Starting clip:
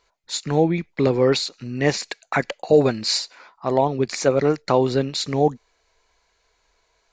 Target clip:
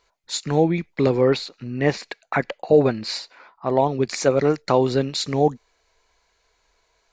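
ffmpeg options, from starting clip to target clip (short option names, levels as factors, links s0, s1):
-filter_complex "[0:a]asettb=1/sr,asplit=3[s0][s1][s2];[s0]atrim=end=1.214[s3];[s1]atrim=start=1.21:end=3.78,asetpts=PTS-STARTPTS,afade=t=in:d=0.004:c=qsin,afade=t=out:st=2.566:d=0.004:c=qsin,equalizer=f=7400:t=o:w=1.6:g=-11.5[s4];[s2]atrim=start=3.776[s5];[s3][s4]acrossfade=d=0.004:c1=hsin:c2=qsin[s6];[s6][s5]acrossfade=d=0.004:c1=qsin:c2=hsin"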